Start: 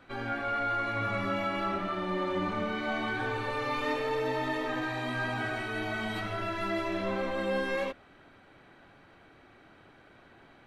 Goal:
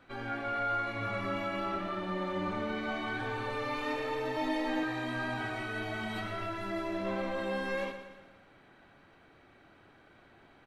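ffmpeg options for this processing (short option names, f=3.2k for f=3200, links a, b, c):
-filter_complex "[0:a]asettb=1/sr,asplit=3[a][b][c];[a]atrim=end=4.364[d];[b]atrim=start=4.36:end=4.83,asetpts=PTS-STARTPTS,afade=t=in:d=0.004:c=qsin,afade=t=out:st=0.466:d=0.004:c=qsin,aecho=1:1:3.6:0.93,atrim=end_sample=20727[e];[c]atrim=start=4.826[f];[d][e]acrossfade=d=0.004:c1=hsin:c2=qsin[g];[g][f]acrossfade=d=0.004:c1=qsin:c2=hsin,asettb=1/sr,asplit=3[h][i][j];[h]atrim=end=6.464[k];[i]atrim=start=6.46:end=7.05,asetpts=PTS-STARTPTS,afade=t=in:d=0.004:c=qsin,afade=t=out:st=0.586:d=0.004:c=qsin,equalizer=f=2.9k:t=o:w=1.9:g=-4[l];[j]atrim=start=7.046[m];[k][l]acrossfade=d=0.004:c1=hsin:c2=qsin[n];[n][m]acrossfade=d=0.004:c1=qsin:c2=hsin,aecho=1:1:118|236|354|472|590|708:0.316|0.161|0.0823|0.0419|0.0214|0.0109,volume=-3.5dB"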